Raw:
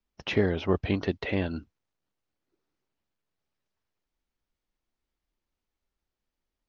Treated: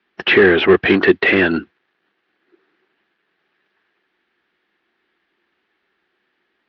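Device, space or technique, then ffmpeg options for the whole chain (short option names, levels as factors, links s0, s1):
overdrive pedal into a guitar cabinet: -filter_complex "[0:a]asplit=2[s0][s1];[s1]highpass=f=720:p=1,volume=15.8,asoftclip=type=tanh:threshold=0.299[s2];[s0][s2]amix=inputs=2:normalize=0,lowpass=f=5000:p=1,volume=0.501,highpass=95,equalizer=f=110:t=q:w=4:g=-9,equalizer=f=190:t=q:w=4:g=3,equalizer=f=360:t=q:w=4:g=9,equalizer=f=580:t=q:w=4:g=-6,equalizer=f=960:t=q:w=4:g=-4,equalizer=f=1700:t=q:w=4:g=8,lowpass=f=3600:w=0.5412,lowpass=f=3600:w=1.3066,volume=1.88"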